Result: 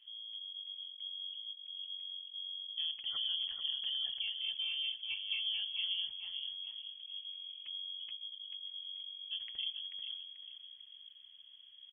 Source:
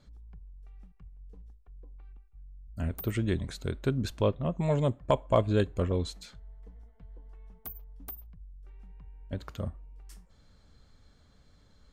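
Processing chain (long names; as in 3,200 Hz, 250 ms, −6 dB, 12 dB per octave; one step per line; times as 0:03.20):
tilt shelving filter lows +7.5 dB, about 900 Hz
brickwall limiter −23.5 dBFS, peak gain reduction 14.5 dB
repeating echo 438 ms, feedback 32%, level −7 dB
on a send at −22 dB: convolution reverb, pre-delay 3 ms
on the sum: voice inversion scrambler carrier 3,300 Hz
level −8 dB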